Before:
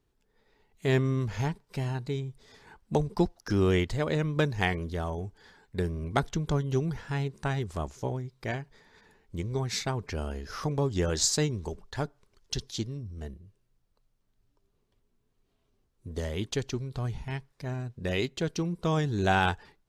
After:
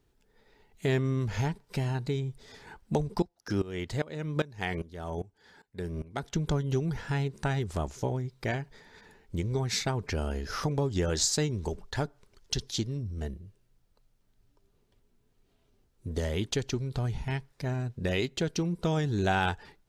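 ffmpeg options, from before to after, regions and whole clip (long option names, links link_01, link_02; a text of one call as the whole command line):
ffmpeg -i in.wav -filter_complex "[0:a]asettb=1/sr,asplit=3[link_01][link_02][link_03];[link_01]atrim=end=3.224[link_04];[link_02]atrim=start=3.22:end=6.36,asetpts=PTS-STARTPTS,afade=type=in:duration=0.004:curve=qsin,afade=type=out:start_time=3.136:duration=0.004:curve=qsin,highpass=frequency=87:poles=1,aeval=exprs='val(0)*pow(10,-20*if(lt(mod(-2.5*n/s,1),2*abs(-2.5)/1000),1-mod(-2.5*n/s,1)/(2*abs(-2.5)/1000),(mod(-2.5*n/s,1)-2*abs(-2.5)/1000)/(1-2*abs(-2.5)/1000))/20)':channel_layout=same[link_05];[link_03]atrim=start=6.356[link_06];[link_04][link_05]acrossfade=duration=0.004:curve1=hsin:curve2=qsin[link_07];[link_07][link_06]acrossfade=duration=0.004:curve1=qsin:curve2=hsin,bandreject=frequency=1100:width=13,acompressor=threshold=-33dB:ratio=2,volume=4.5dB" out.wav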